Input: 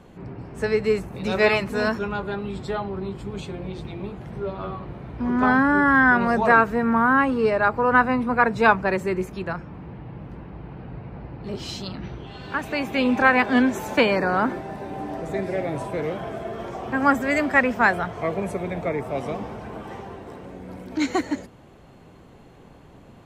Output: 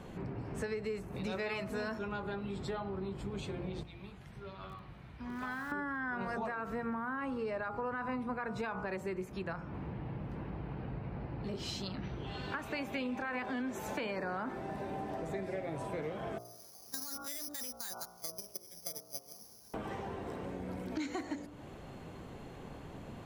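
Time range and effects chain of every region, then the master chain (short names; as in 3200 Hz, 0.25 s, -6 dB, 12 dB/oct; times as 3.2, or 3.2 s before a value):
3.83–5.72 passive tone stack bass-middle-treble 5-5-5 + lo-fi delay 91 ms, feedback 80%, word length 7-bit, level -11 dB
16.38–19.74 gate -23 dBFS, range -32 dB + careless resampling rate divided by 8×, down none, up zero stuff
whole clip: de-hum 58.63 Hz, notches 25; limiter -15 dBFS; compressor 4:1, threshold -39 dBFS; gain +1 dB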